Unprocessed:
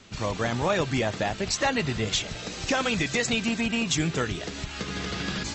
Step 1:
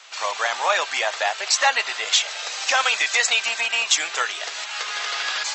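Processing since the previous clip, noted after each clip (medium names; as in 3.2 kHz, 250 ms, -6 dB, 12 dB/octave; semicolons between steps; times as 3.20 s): high-pass 720 Hz 24 dB/octave; trim +8.5 dB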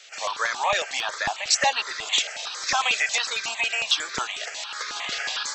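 stepped phaser 11 Hz 260–2900 Hz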